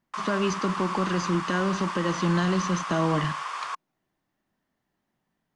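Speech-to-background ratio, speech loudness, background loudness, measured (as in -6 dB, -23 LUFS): 5.5 dB, -27.0 LUFS, -32.5 LUFS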